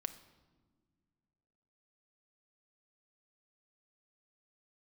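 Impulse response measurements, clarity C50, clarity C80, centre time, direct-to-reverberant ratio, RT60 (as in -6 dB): 13.5 dB, 15.5 dB, 7 ms, 9.0 dB, not exponential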